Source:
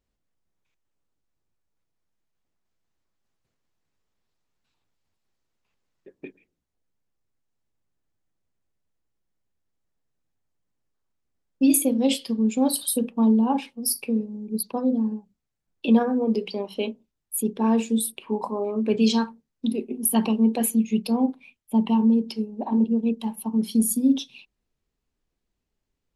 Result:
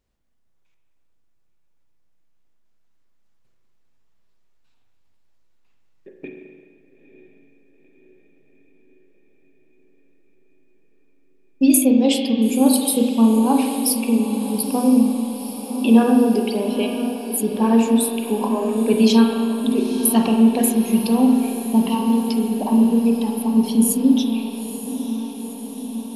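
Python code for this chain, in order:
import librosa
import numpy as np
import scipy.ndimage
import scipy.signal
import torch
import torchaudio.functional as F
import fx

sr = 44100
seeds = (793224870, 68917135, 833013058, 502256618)

p1 = fx.riaa(x, sr, side='recording', at=(21.88, 22.29))
p2 = p1 + fx.echo_diffused(p1, sr, ms=923, feedback_pct=69, wet_db=-11.5, dry=0)
p3 = fx.rev_spring(p2, sr, rt60_s=1.9, pass_ms=(35, 43), chirp_ms=40, drr_db=2.5)
y = p3 * librosa.db_to_amplitude(4.0)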